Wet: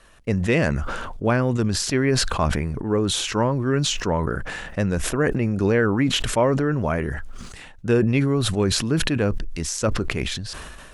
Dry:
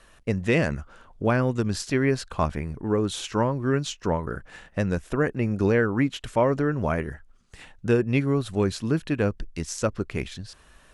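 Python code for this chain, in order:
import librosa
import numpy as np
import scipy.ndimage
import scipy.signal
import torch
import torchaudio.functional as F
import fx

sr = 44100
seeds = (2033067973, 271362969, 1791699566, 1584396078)

y = fx.sustainer(x, sr, db_per_s=28.0)
y = F.gain(torch.from_numpy(y), 1.5).numpy()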